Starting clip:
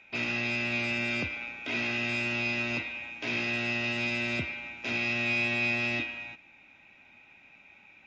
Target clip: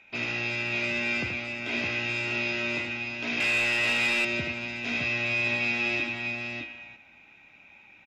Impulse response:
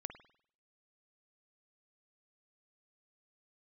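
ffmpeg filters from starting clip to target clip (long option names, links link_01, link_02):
-filter_complex "[0:a]aecho=1:1:78|612:0.501|0.562,asettb=1/sr,asplit=3[link_01][link_02][link_03];[link_01]atrim=end=3.404[link_04];[link_02]atrim=start=3.4:end=4.25,asetpts=PTS-STARTPTS,afade=type=in:duration=0.004:curve=qsin,afade=type=out:start_time=0.846:duration=0.004:curve=qsin,asplit=2[link_05][link_06];[link_06]highpass=frequency=720:poles=1,volume=14dB,asoftclip=type=tanh:threshold=-17dB[link_07];[link_05][link_07]amix=inputs=2:normalize=0,lowpass=frequency=5500:poles=1,volume=-6dB[link_08];[link_03]atrim=start=4.246[link_09];[link_04][link_08]acrossfade=duration=0.004:curve1=hsin:curve2=qsin[link_10];[link_10][link_09]acrossfade=duration=0.004:curve1=qsin:curve2=hsin"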